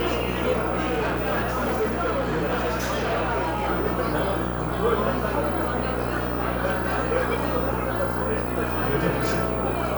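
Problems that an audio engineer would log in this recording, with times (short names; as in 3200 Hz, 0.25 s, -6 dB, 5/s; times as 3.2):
buzz 60 Hz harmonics 24 -29 dBFS
0.8–3.69 clipped -20 dBFS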